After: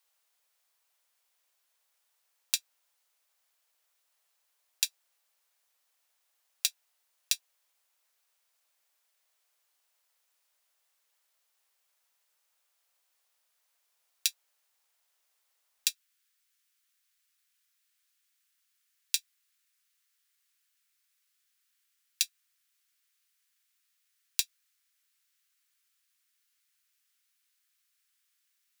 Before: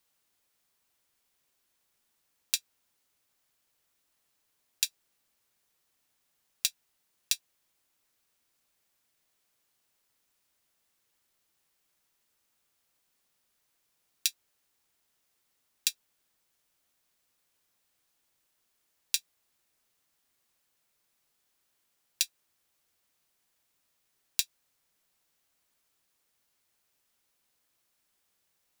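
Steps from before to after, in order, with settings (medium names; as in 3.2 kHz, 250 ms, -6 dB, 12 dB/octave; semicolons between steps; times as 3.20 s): high-pass 520 Hz 24 dB/octave, from 15.89 s 1.4 kHz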